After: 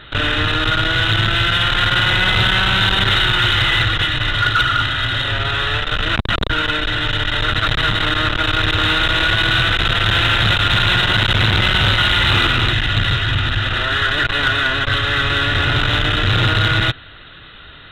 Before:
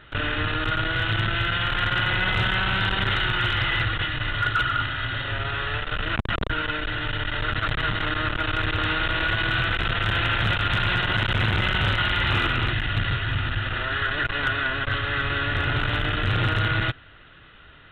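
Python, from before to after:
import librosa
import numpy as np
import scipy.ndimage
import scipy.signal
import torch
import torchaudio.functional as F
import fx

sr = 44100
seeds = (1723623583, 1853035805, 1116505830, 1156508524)

p1 = fx.peak_eq(x, sr, hz=3900.0, db=11.0, octaves=0.41)
p2 = 10.0 ** (-26.0 / 20.0) * np.tanh(p1 / 10.0 ** (-26.0 / 20.0))
p3 = p1 + F.gain(torch.from_numpy(p2), -6.0).numpy()
y = F.gain(torch.from_numpy(p3), 5.0).numpy()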